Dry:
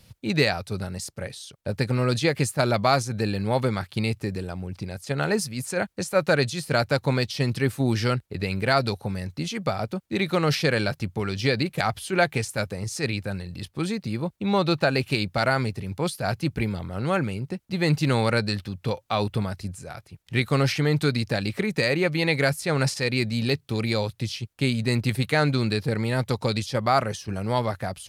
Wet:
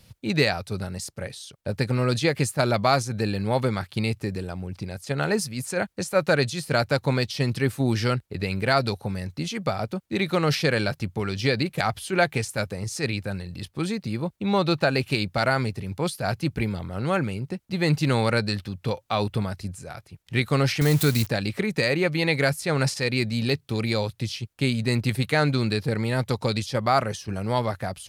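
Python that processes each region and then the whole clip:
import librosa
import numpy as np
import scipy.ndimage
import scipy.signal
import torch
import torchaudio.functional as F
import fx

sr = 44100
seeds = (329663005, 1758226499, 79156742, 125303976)

y = fx.chain(x, sr, fx.crossing_spikes(level_db=-19.0),
    fx.low_shelf(hz=84.0, db=12.0), at=(20.81, 21.27))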